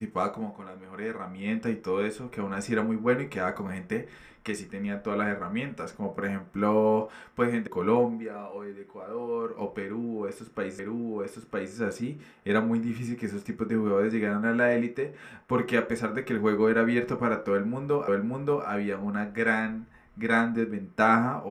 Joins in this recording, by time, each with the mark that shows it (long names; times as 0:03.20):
0:07.67: cut off before it has died away
0:10.79: the same again, the last 0.96 s
0:18.08: the same again, the last 0.58 s